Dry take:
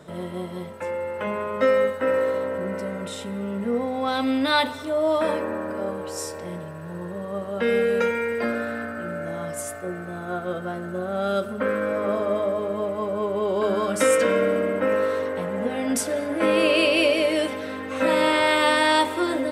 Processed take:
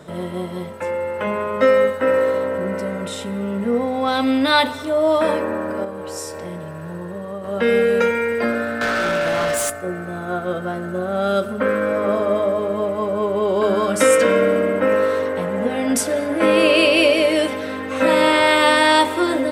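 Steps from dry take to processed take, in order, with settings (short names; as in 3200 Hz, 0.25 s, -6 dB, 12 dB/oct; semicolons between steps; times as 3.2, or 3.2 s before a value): 5.84–7.44 compressor, threshold -31 dBFS, peak gain reduction 7 dB; 8.81–9.7 overdrive pedal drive 24 dB, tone 7600 Hz, clips at -18.5 dBFS; gain +5 dB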